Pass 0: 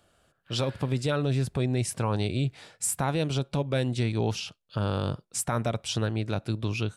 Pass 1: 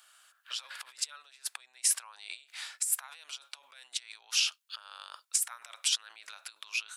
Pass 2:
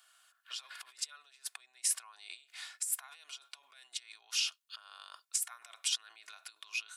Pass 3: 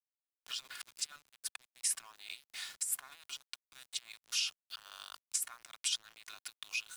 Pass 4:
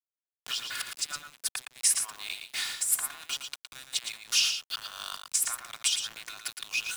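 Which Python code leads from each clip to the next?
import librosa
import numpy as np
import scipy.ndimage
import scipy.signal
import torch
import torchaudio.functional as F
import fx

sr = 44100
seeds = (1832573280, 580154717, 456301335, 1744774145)

y1 = fx.over_compress(x, sr, threshold_db=-33.0, ratio=-0.5)
y1 = scipy.signal.sosfilt(scipy.signal.butter(4, 1100.0, 'highpass', fs=sr, output='sos'), y1)
y1 = fx.high_shelf(y1, sr, hz=5300.0, db=6.0)
y2 = y1 + 0.48 * np.pad(y1, (int(2.8 * sr / 1000.0), 0))[:len(y1)]
y2 = y2 * librosa.db_to_amplitude(-5.5)
y3 = np.where(np.abs(y2) >= 10.0 ** (-52.0 / 20.0), y2, 0.0)
y3 = fx.band_squash(y3, sr, depth_pct=40)
y4 = fx.law_mismatch(y3, sr, coded='mu')
y4 = fx.tremolo_shape(y4, sr, shape='triangle', hz=2.8, depth_pct=55)
y4 = y4 + 10.0 ** (-7.0 / 20.0) * np.pad(y4, (int(114 * sr / 1000.0), 0))[:len(y4)]
y4 = y4 * librosa.db_to_amplitude(8.5)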